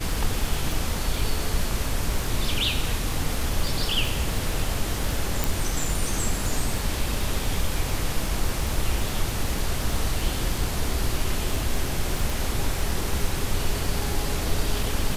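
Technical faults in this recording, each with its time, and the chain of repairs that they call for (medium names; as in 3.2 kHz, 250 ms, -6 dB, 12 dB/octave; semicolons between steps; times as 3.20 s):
crackle 51 per s -28 dBFS
5.44 s: pop
12.30 s: pop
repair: de-click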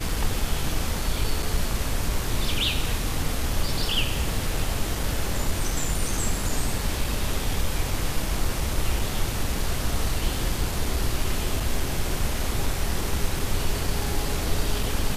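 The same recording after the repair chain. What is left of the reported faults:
nothing left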